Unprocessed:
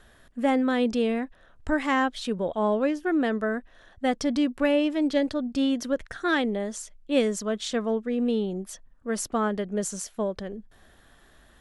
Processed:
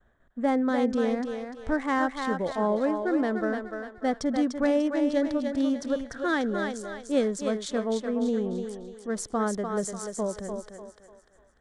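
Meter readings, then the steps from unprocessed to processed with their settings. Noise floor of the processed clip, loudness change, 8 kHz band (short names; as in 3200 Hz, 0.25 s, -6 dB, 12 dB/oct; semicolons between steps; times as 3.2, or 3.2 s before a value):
-61 dBFS, -1.5 dB, -3.0 dB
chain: Wiener smoothing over 9 samples; expander -49 dBFS; bell 2700 Hz -11 dB 0.46 oct; on a send: thinning echo 0.296 s, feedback 42%, high-pass 390 Hz, level -4.5 dB; on the sum: downsampling 22050 Hz; gain -1.5 dB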